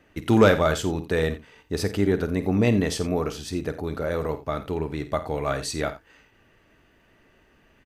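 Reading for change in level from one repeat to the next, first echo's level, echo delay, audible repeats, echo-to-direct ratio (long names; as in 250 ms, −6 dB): repeats not evenly spaced, −12.5 dB, 50 ms, 2, −11.0 dB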